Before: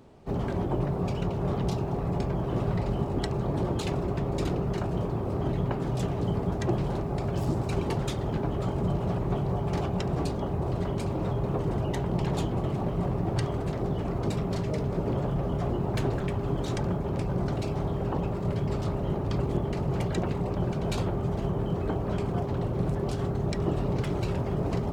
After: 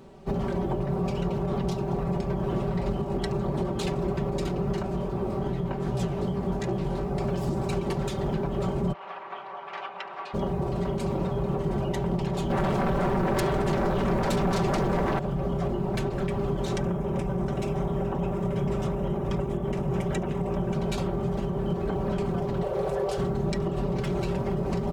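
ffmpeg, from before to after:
-filter_complex "[0:a]asettb=1/sr,asplit=3[a][b][c];[a]atrim=end=4.824[d];[b]atrim=start=4.82:end=7.13,asetpts=PTS-STARTPTS,afade=t=in:d=0.004:c=qsin,afade=t=out:st=2.306:d=0.004:c=qsin,flanger=delay=15:depth=7:speed=2.6[e];[c]atrim=start=7.126[f];[d][e]acrossfade=d=0.004:c1=hsin:c2=qsin[g];[g][f]acrossfade=d=0.004:c1=qsin:c2=hsin,asplit=3[h][i][j];[h]afade=t=out:st=8.92:d=0.02[k];[i]asuperpass=centerf=1700:order=4:qfactor=0.82,afade=t=in:st=8.92:d=0.02,afade=t=out:st=10.33:d=0.02[l];[j]afade=t=in:st=10.33:d=0.02[m];[k][l][m]amix=inputs=3:normalize=0,asettb=1/sr,asplit=3[n][o][p];[n]atrim=end=12.504[q];[o]atrim=start=12.5:end=15.19,asetpts=PTS-STARTPTS,afade=t=in:d=0.004:c=qsin,afade=t=out:st=2.686:d=0.004:c=qsin,aeval=exprs='0.168*sin(PI/2*4.47*val(0)/0.168)':c=same[r];[p]atrim=start=15.186[s];[q][r]acrossfade=d=0.004:c1=hsin:c2=qsin[t];[t][s]acrossfade=d=0.004:c1=qsin:c2=hsin,asettb=1/sr,asplit=3[u][v][w];[u]atrim=end=16.794[x];[v]atrim=start=16.79:end=20.74,asetpts=PTS-STARTPTS,afade=t=in:d=0.004:c=qsin,afade=t=out:st=3.946:d=0.004:c=qsin,equalizer=f=4.4k:w=5.4:g=-13.5[y];[w]atrim=start=20.736[z];[x][y]acrossfade=d=0.004:c1=hsin:c2=qsin[aa];[aa][z]acrossfade=d=0.004:c1=qsin:c2=hsin,asettb=1/sr,asplit=3[ab][ac][ad];[ab]atrim=end=22.634[ae];[ac]atrim=start=22.63:end=23.18,asetpts=PTS-STARTPTS,afade=t=in:d=0.004:c=qsin,afade=t=out:st=0.546:d=0.004:c=qsin,lowshelf=f=360:t=q:w=3:g=-9.5[af];[ad]atrim=start=23.176[ag];[ae][af]acrossfade=d=0.004:c1=hsin:c2=qsin[ah];[ah][ag]acrossfade=d=0.004:c1=qsin:c2=hsin,aecho=1:1:5.2:0.62,alimiter=limit=-22.5dB:level=0:latency=1:release=192,volume=3.5dB"

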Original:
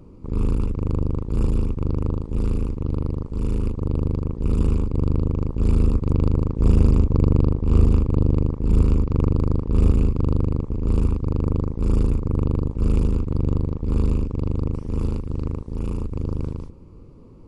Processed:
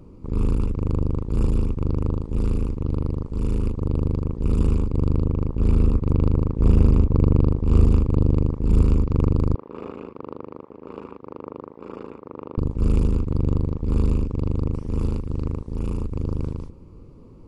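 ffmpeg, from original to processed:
-filter_complex "[0:a]asettb=1/sr,asplit=3[a][b][c];[a]atrim=end=5.244[d];[b]atrim=start=5.24:end=7.46,asetpts=PTS-STARTPTS,afade=t=in:d=0.004:c=qsin,afade=t=out:st=2.216:d=0.004:c=qsin,bass=f=250:g=0,treble=f=4k:g=-6[e];[c]atrim=start=7.456[f];[d][e]acrossfade=d=0.004:c1=hsin:c2=qsin[g];[g][f]acrossfade=d=0.004:c1=qsin:c2=hsin,asettb=1/sr,asplit=3[h][i][j];[h]atrim=end=9.554[k];[i]atrim=start=9.55:end=12.58,asetpts=PTS-STARTPTS,afade=t=in:d=0.004:c=qsin,afade=t=out:st=3.026:d=0.004:c=qsin,highpass=530,lowpass=2.1k[l];[j]atrim=start=12.576[m];[k][l]acrossfade=d=0.004:c1=hsin:c2=qsin[n];[n][m]acrossfade=d=0.004:c1=qsin:c2=hsin"

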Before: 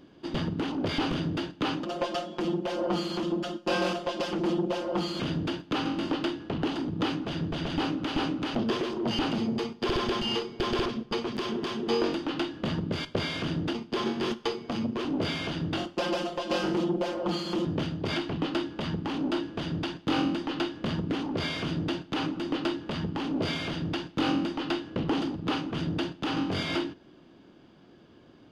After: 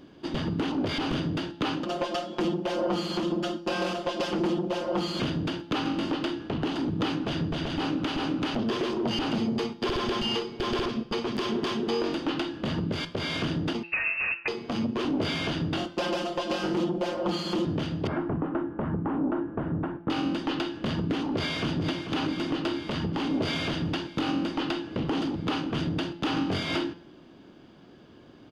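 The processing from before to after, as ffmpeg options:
-filter_complex "[0:a]asettb=1/sr,asplit=3[a][b][c];[a]atrim=end=13.834[d];[b]atrim=start=13.83:end=14.48,asetpts=PTS-STARTPTS,afade=t=in:d=0.004:c=qsin,afade=t=out:st=0.646:d=0.004:c=qsin,lowpass=f=2.5k:t=q:w=0.5098,lowpass=f=2.5k:t=q:w=0.6013,lowpass=f=2.5k:t=q:w=0.9,lowpass=f=2.5k:t=q:w=2.563,afreqshift=-2900[e];[c]atrim=start=14.476[f];[d][e]acrossfade=d=0.004:c1=hsin:c2=qsin[g];[g][f]acrossfade=d=0.004:c1=qsin:c2=hsin,asettb=1/sr,asplit=3[h][i][j];[h]atrim=end=18.074[k];[i]atrim=start=18.07:end=20.1,asetpts=PTS-STARTPTS,afade=t=in:d=0.004:c=qsin,afade=t=out:st=2.026:d=0.004:c=qsin,lowpass=f=1.5k:w=0.5412,lowpass=f=1.5k:w=1.3066[l];[j]atrim=start=20.096[m];[k][l]acrossfade=d=0.004:c1=hsin:c2=qsin[n];[n][m]acrossfade=d=0.004:c1=qsin:c2=hsin,asplit=2[o][p];[p]afade=t=in:st=21.21:d=0.01,afade=t=out:st=21.74:d=0.01,aecho=0:1:440|880|1320|1760|2200|2640|3080|3520|3960|4400|4840|5280:0.375837|0.281878|0.211409|0.158556|0.118917|0.089188|0.066891|0.0501682|0.0376262|0.0282196|0.0211647|0.0158735[q];[o][q]amix=inputs=2:normalize=0,bandreject=f=170.5:t=h:w=4,bandreject=f=341:t=h:w=4,bandreject=f=511.5:t=h:w=4,bandreject=f=682:t=h:w=4,bandreject=f=852.5:t=h:w=4,bandreject=f=1.023k:t=h:w=4,bandreject=f=1.1935k:t=h:w=4,bandreject=f=1.364k:t=h:w=4,bandreject=f=1.5345k:t=h:w=4,bandreject=f=1.705k:t=h:w=4,bandreject=f=1.8755k:t=h:w=4,bandreject=f=2.046k:t=h:w=4,bandreject=f=2.2165k:t=h:w=4,bandreject=f=2.387k:t=h:w=4,bandreject=f=2.5575k:t=h:w=4,bandreject=f=2.728k:t=h:w=4,bandreject=f=2.8985k:t=h:w=4,bandreject=f=3.069k:t=h:w=4,bandreject=f=3.2395k:t=h:w=4,bandreject=f=3.41k:t=h:w=4,bandreject=f=3.5805k:t=h:w=4,bandreject=f=3.751k:t=h:w=4,bandreject=f=3.9215k:t=h:w=4,bandreject=f=4.092k:t=h:w=4,bandreject=f=4.2625k:t=h:w=4,bandreject=f=4.433k:t=h:w=4,bandreject=f=4.6035k:t=h:w=4,bandreject=f=4.774k:t=h:w=4,bandreject=f=4.9445k:t=h:w=4,bandreject=f=5.115k:t=h:w=4,bandreject=f=5.2855k:t=h:w=4,bandreject=f=5.456k:t=h:w=4,bandreject=f=5.6265k:t=h:w=4,alimiter=limit=-22.5dB:level=0:latency=1:release=215,volume=3.5dB"

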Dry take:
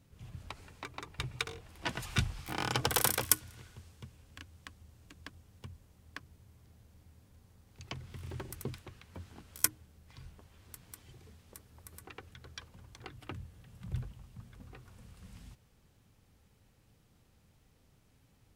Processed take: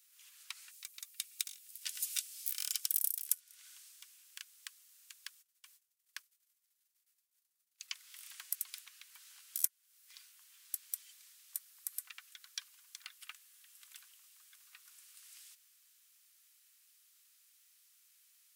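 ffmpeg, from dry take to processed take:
-filter_complex "[0:a]asettb=1/sr,asplit=3[a][b][c];[a]atrim=end=0.714[d];[b]atrim=start=0.71:end=3.26,asetpts=PTS-STARTPTS,afade=t=in:d=0.004:c=qsin,afade=t=out:st=2.546:d=0.004:c=qsin,aderivative[e];[c]atrim=start=3.256[f];[d][e]acrossfade=d=0.004:c1=hsin:c2=qsin[g];[g][f]acrossfade=d=0.004:c1=qsin:c2=hsin,asplit=3[h][i][j];[h]afade=t=out:st=5.41:d=0.02[k];[i]agate=range=-33dB:threshold=-50dB:ratio=3:release=100:detection=peak,afade=t=in:st=5.41:d=0.02,afade=t=out:st=7.88:d=0.02[l];[j]afade=t=in:st=7.88:d=0.02[m];[k][l][m]amix=inputs=3:normalize=0,highpass=f=1.2k:w=0.5412,highpass=f=1.2k:w=1.3066,aderivative,acompressor=threshold=-41dB:ratio=5,volume=10dB"

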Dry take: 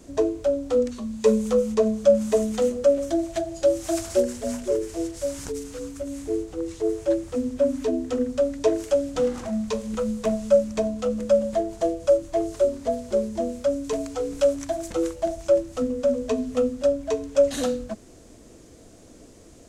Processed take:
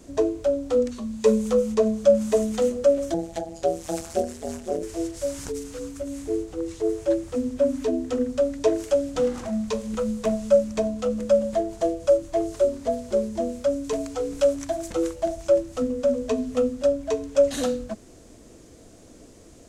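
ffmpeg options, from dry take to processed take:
-filter_complex "[0:a]asettb=1/sr,asplit=3[a][b][c];[a]atrim=end=3.144[d];[b]atrim=start=3.14:end=4.83,asetpts=PTS-STARTPTS,afade=t=in:d=0.004:c=qsin,afade=t=out:st=1.686:d=0.004:c=qsin,tremolo=f=160:d=0.889[e];[c]atrim=start=4.826[f];[d][e]acrossfade=d=0.004:c1=hsin:c2=qsin[g];[g][f]acrossfade=d=0.004:c1=qsin:c2=hsin"

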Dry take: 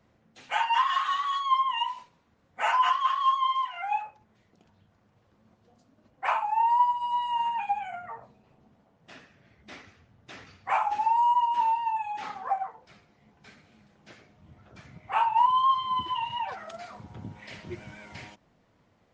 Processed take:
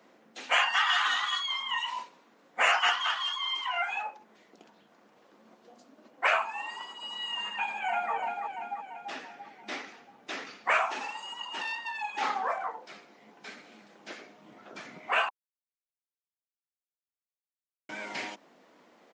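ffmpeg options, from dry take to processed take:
-filter_complex "[0:a]asplit=2[a][b];[b]afade=t=in:st=7.54:d=0.01,afade=t=out:st=8.13:d=0.01,aecho=0:1:340|680|1020|1360|1700|2040|2380:0.421697|0.231933|0.127563|0.0701598|0.0385879|0.0212233|0.0116728[c];[a][c]amix=inputs=2:normalize=0,asettb=1/sr,asplit=3[d][e][f];[d]atrim=end=11.614[g];[e]atrim=start=11.61:end=12.1,asetpts=PTS-STARTPTS,afade=t=in:d=0.004:c=qsin,afade=t=out:st=0.486:d=0.004:c=qsin,aeval=exprs='(tanh(22.4*val(0)+0.3)-tanh(0.3))/22.4':c=same[h];[f]atrim=start=12.096[i];[g][h]acrossfade=d=0.004:c1=hsin:c2=qsin[j];[j][i]acrossfade=d=0.004:c1=qsin:c2=hsin,asplit=3[k][l][m];[k]atrim=end=15.29,asetpts=PTS-STARTPTS,afade=t=out:st=15.286:d=0.004:c=hsin[n];[l]atrim=start=15.29:end=17.89,asetpts=PTS-STARTPTS,volume=0[o];[m]atrim=start=17.89,asetpts=PTS-STARTPTS,afade=t=in:d=0.004:c=hsin[p];[n][o][p]concat=n=3:v=0:a=1,afftfilt=real='re*lt(hypot(re,im),0.158)':imag='im*lt(hypot(re,im),0.158)':win_size=1024:overlap=0.75,highpass=f=250:w=0.5412,highpass=f=250:w=1.3066,volume=8.5dB"

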